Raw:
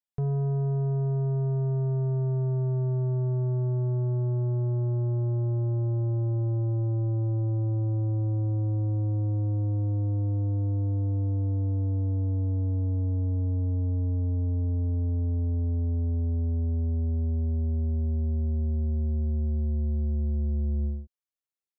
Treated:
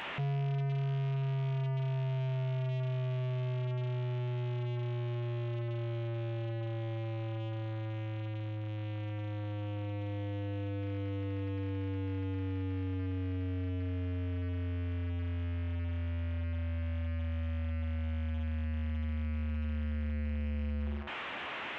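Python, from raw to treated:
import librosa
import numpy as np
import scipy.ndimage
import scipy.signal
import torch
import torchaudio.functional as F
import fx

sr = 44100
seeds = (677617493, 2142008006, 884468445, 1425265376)

y = fx.delta_mod(x, sr, bps=16000, step_db=-38.0)
y = fx.highpass(y, sr, hz=250.0, slope=6)
y = fx.notch(y, sr, hz=460.0, q=12.0)
y = 10.0 ** (-37.0 / 20.0) * np.tanh(y / 10.0 ** (-37.0 / 20.0))
y = fx.doubler(y, sr, ms=14.0, db=-10.5)
y = y * 10.0 ** (6.0 / 20.0)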